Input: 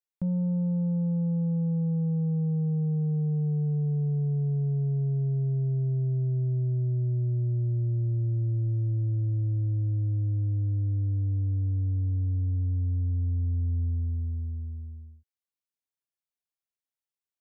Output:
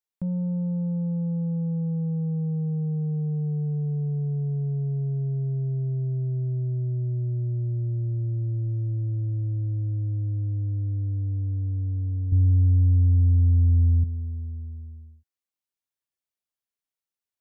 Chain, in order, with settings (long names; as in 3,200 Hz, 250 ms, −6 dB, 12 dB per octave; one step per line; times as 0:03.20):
0:12.32–0:14.04: tilt shelving filter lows +9 dB, about 790 Hz